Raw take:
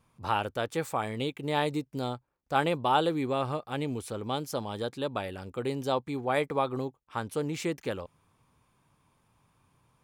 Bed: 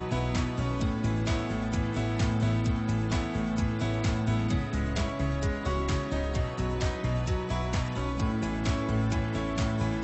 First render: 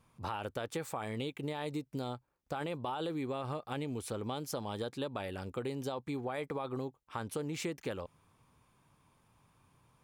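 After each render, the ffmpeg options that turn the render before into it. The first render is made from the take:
-af "alimiter=limit=-21.5dB:level=0:latency=1:release=20,acompressor=threshold=-34dB:ratio=6"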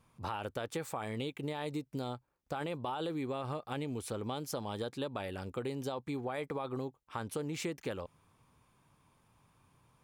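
-af anull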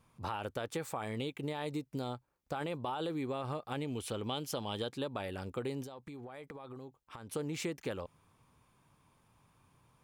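-filter_complex "[0:a]asettb=1/sr,asplit=3[a][b][c];[a]atrim=end=3.874[d];[b]atrim=start=3.87:end=4.93,asetpts=PTS-STARTPTS,afade=t=in:d=0.004:c=qsin,afade=t=out:st=1.056:d=0.004:c=qsin,equalizer=f=3k:w=3:g=9.5[e];[c]atrim=start=4.926[f];[d][e]acrossfade=d=0.004:c1=hsin:c2=qsin[g];[g][f]acrossfade=d=0.004:c1=qsin:c2=hsin,asettb=1/sr,asplit=3[h][i][j];[h]atrim=end=5.834[k];[i]atrim=start=5.83:end=7.33,asetpts=PTS-STARTPTS,afade=t=in:d=0.004:c=qsin,afade=t=out:st=1.496:d=0.004:c=qsin,acompressor=threshold=-43dB:ratio=12:attack=3.2:release=140:knee=1:detection=peak[l];[j]atrim=start=7.326[m];[k][l]acrossfade=d=0.004:c1=hsin:c2=qsin[n];[n][m]acrossfade=d=0.004:c1=qsin:c2=hsin"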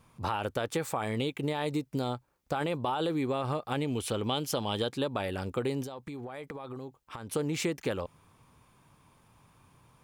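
-af "volume=6.5dB"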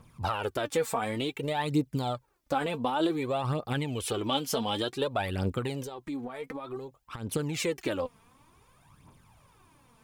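-af "aphaser=in_gain=1:out_gain=1:delay=4.6:decay=0.61:speed=0.55:type=triangular"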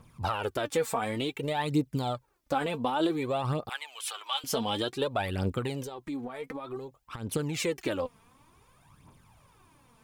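-filter_complex "[0:a]asettb=1/sr,asplit=3[a][b][c];[a]atrim=end=3.694[d];[b]atrim=start=3.69:end=4.44,asetpts=PTS-STARTPTS,afade=t=in:d=0.004:c=qsin,afade=t=out:st=0.746:d=0.004:c=qsin,highpass=f=890:w=0.5412,highpass=f=890:w=1.3066[e];[c]atrim=start=4.436[f];[d][e]acrossfade=d=0.004:c1=hsin:c2=qsin[g];[g][f]acrossfade=d=0.004:c1=qsin:c2=hsin"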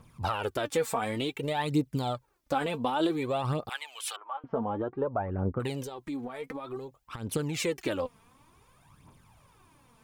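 -filter_complex "[0:a]asettb=1/sr,asplit=3[a][b][c];[a]atrim=end=4.164[d];[b]atrim=start=4.16:end=5.6,asetpts=PTS-STARTPTS,afade=t=in:d=0.004:c=qsin,afade=t=out:st=1.436:d=0.004:c=qsin,lowpass=f=1.3k:w=0.5412,lowpass=f=1.3k:w=1.3066[e];[c]atrim=start=5.596[f];[d][e]acrossfade=d=0.004:c1=hsin:c2=qsin[g];[g][f]acrossfade=d=0.004:c1=qsin:c2=hsin"

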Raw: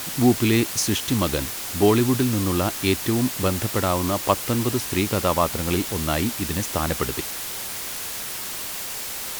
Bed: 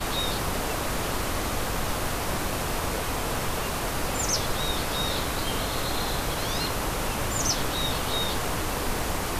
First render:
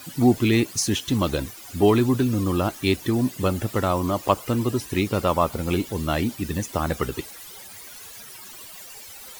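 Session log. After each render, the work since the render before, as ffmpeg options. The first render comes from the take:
-af "afftdn=nr=15:nf=-32"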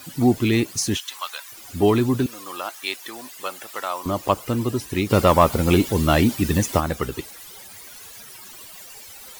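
-filter_complex "[0:a]asettb=1/sr,asplit=3[a][b][c];[a]atrim=end=0.974[d];[b]atrim=start=0.97:end=1.52,asetpts=PTS-STARTPTS,afade=t=in:d=0.004:c=qsin,afade=t=out:st=0.546:d=0.004:c=qsin,highpass=f=960:w=0.5412,highpass=f=960:w=1.3066[e];[c]atrim=start=1.516[f];[d][e]acrossfade=d=0.004:c1=hsin:c2=qsin[g];[g][f]acrossfade=d=0.004:c1=qsin:c2=hsin,asettb=1/sr,asplit=3[h][i][j];[h]atrim=end=2.264[k];[i]atrim=start=2.26:end=4.06,asetpts=PTS-STARTPTS,afade=t=in:d=0.004:c=qsin,afade=t=out:st=1.796:d=0.004:c=qsin,highpass=840[l];[j]atrim=start=4.056[m];[k][l]acrossfade=d=0.004:c1=hsin:c2=qsin[n];[n][m]acrossfade=d=0.004:c1=qsin:c2=hsin,asplit=3[o][p][q];[o]afade=t=out:st=5.09:d=0.02[r];[p]acontrast=85,afade=t=in:st=5.09:d=0.02,afade=t=out:st=6.79:d=0.02[s];[q]afade=t=in:st=6.79:d=0.02[t];[r][s][t]amix=inputs=3:normalize=0"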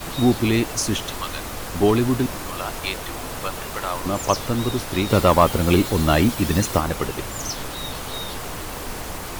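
-filter_complex "[1:a]volume=-3.5dB[a];[0:a][a]amix=inputs=2:normalize=0"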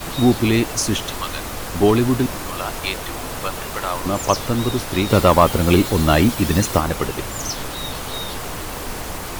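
-af "volume=2.5dB,alimiter=limit=-1dB:level=0:latency=1"

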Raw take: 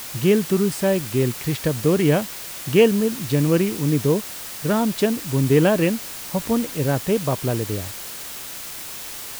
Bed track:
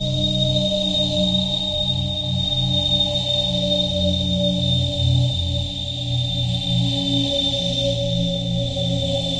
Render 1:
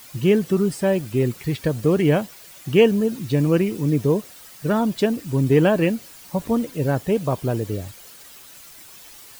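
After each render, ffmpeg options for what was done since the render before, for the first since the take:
-af "afftdn=nr=12:nf=-34"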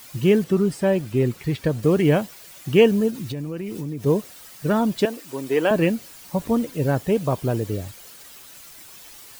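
-filter_complex "[0:a]asettb=1/sr,asplit=3[a][b][c];[a]atrim=end=0.444[d];[b]atrim=start=0.44:end=1.83,asetpts=PTS-STARTPTS,afade=t=in:d=0.004:c=qsin,afade=t=out:st=1.386:d=0.004:c=qsin,highshelf=f=5.2k:g=-5.5[e];[c]atrim=start=1.826[f];[d][e]acrossfade=d=0.004:c1=hsin:c2=qsin[g];[g][f]acrossfade=d=0.004:c1=qsin:c2=hsin,asplit=3[h][i][j];[h]afade=t=out:st=3.1:d=0.02[k];[i]acompressor=threshold=-26dB:ratio=8:attack=3.2:release=140:knee=1:detection=peak,afade=t=in:st=3.1:d=0.02,afade=t=out:st=4.05:d=0.02[l];[j]afade=t=in:st=4.05:d=0.02[m];[k][l][m]amix=inputs=3:normalize=0,asettb=1/sr,asplit=3[n][o][p];[n]atrim=end=5.054[q];[o]atrim=start=5.05:end=5.71,asetpts=PTS-STARTPTS,afade=t=in:d=0.004:c=qsin,afade=t=out:st=0.656:d=0.004:c=qsin,highpass=440[r];[p]atrim=start=5.706[s];[q][r]acrossfade=d=0.004:c1=hsin:c2=qsin[t];[t][s]acrossfade=d=0.004:c1=qsin:c2=hsin"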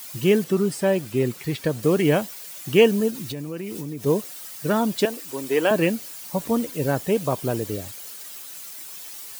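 -af "highpass=f=180:p=1,highshelf=f=4.7k:g=7"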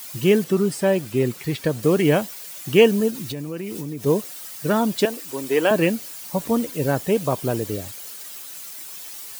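-af "volume=1.5dB"

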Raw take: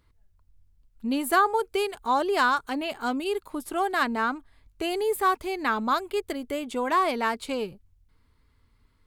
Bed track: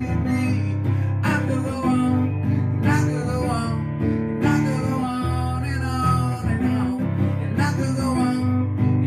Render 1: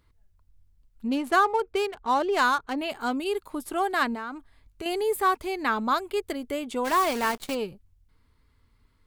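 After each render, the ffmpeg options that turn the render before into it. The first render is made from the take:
-filter_complex "[0:a]asettb=1/sr,asplit=3[a][b][c];[a]atrim=end=1.084[d];[b]atrim=start=1.08:end=2.78,asetpts=PTS-STARTPTS,afade=t=in:d=0.004:c=qsin,afade=t=out:st=1.696:d=0.004:c=qsin,adynamicsmooth=sensitivity=7.5:basefreq=2k[e];[c]atrim=start=2.776[f];[d][e]acrossfade=d=0.004:c1=hsin:c2=qsin[g];[g][f]acrossfade=d=0.004:c1=qsin:c2=hsin,asettb=1/sr,asplit=3[h][i][j];[h]atrim=end=4.144[k];[i]atrim=start=4.14:end=4.86,asetpts=PTS-STARTPTS,afade=t=in:d=0.004:c=qsin,afade=t=out:st=0.716:d=0.004:c=qsin,acompressor=threshold=-31dB:ratio=6:attack=3.2:release=140:knee=1:detection=peak[l];[j]atrim=start=4.856[m];[k][l]acrossfade=d=0.004:c1=hsin:c2=qsin[n];[n][m]acrossfade=d=0.004:c1=qsin:c2=hsin,asplit=3[o][p][q];[o]afade=t=out:st=6.84:d=0.02[r];[p]acrusher=bits=6:dc=4:mix=0:aa=0.000001,afade=t=in:st=6.84:d=0.02,afade=t=out:st=7.54:d=0.02[s];[q]afade=t=in:st=7.54:d=0.02[t];[r][s][t]amix=inputs=3:normalize=0"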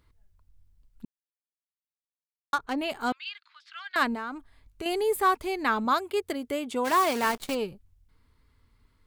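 -filter_complex "[0:a]asettb=1/sr,asplit=3[a][b][c];[a]atrim=end=3.124[d];[b]atrim=start=3.12:end=3.96,asetpts=PTS-STARTPTS,afade=t=in:d=0.004:c=qsin,afade=t=out:st=0.836:d=0.004:c=qsin,asuperpass=centerf=2700:order=8:qfactor=0.79[e];[c]atrim=start=3.956[f];[d][e]acrossfade=d=0.004:c1=hsin:c2=qsin[g];[g][f]acrossfade=d=0.004:c1=qsin:c2=hsin,asettb=1/sr,asplit=3[h][i][j];[h]atrim=end=5.854[k];[i]atrim=start=5.85:end=7.27,asetpts=PTS-STARTPTS,afade=t=in:d=0.004:c=qsin,afade=t=out:st=1.416:d=0.004:c=qsin,highpass=74[l];[j]atrim=start=7.266[m];[k][l]acrossfade=d=0.004:c1=hsin:c2=qsin[n];[n][m]acrossfade=d=0.004:c1=qsin:c2=hsin,asplit=3[o][p][q];[o]atrim=end=1.05,asetpts=PTS-STARTPTS,afade=t=out:st=1.046:d=0.004:c=hsin[r];[p]atrim=start=1.05:end=2.53,asetpts=PTS-STARTPTS,volume=0[s];[q]atrim=start=2.53,asetpts=PTS-STARTPTS,afade=t=in:d=0.004:c=hsin[t];[r][s][t]concat=n=3:v=0:a=1"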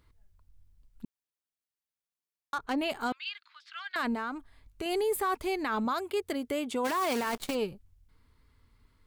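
-af "alimiter=limit=-22.5dB:level=0:latency=1:release=15"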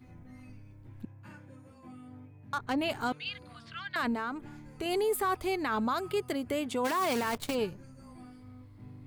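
-filter_complex "[1:a]volume=-29.5dB[a];[0:a][a]amix=inputs=2:normalize=0"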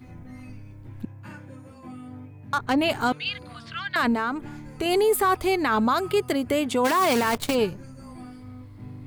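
-af "volume=8.5dB"

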